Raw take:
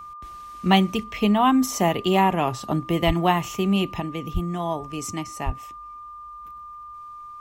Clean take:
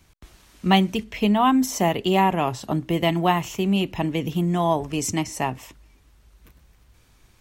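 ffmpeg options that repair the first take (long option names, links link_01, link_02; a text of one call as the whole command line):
ffmpeg -i in.wav -filter_complex "[0:a]bandreject=frequency=1200:width=30,asplit=3[link_01][link_02][link_03];[link_01]afade=type=out:start_time=3.06:duration=0.02[link_04];[link_02]highpass=frequency=140:width=0.5412,highpass=frequency=140:width=1.3066,afade=type=in:start_time=3.06:duration=0.02,afade=type=out:start_time=3.18:duration=0.02[link_05];[link_03]afade=type=in:start_time=3.18:duration=0.02[link_06];[link_04][link_05][link_06]amix=inputs=3:normalize=0,asplit=3[link_07][link_08][link_09];[link_07]afade=type=out:start_time=4.33:duration=0.02[link_10];[link_08]highpass=frequency=140:width=0.5412,highpass=frequency=140:width=1.3066,afade=type=in:start_time=4.33:duration=0.02,afade=type=out:start_time=4.45:duration=0.02[link_11];[link_09]afade=type=in:start_time=4.45:duration=0.02[link_12];[link_10][link_11][link_12]amix=inputs=3:normalize=0,asplit=3[link_13][link_14][link_15];[link_13]afade=type=out:start_time=5.45:duration=0.02[link_16];[link_14]highpass=frequency=140:width=0.5412,highpass=frequency=140:width=1.3066,afade=type=in:start_time=5.45:duration=0.02,afade=type=out:start_time=5.57:duration=0.02[link_17];[link_15]afade=type=in:start_time=5.57:duration=0.02[link_18];[link_16][link_17][link_18]amix=inputs=3:normalize=0,asetnsamples=nb_out_samples=441:pad=0,asendcmd='4 volume volume 6dB',volume=0dB" out.wav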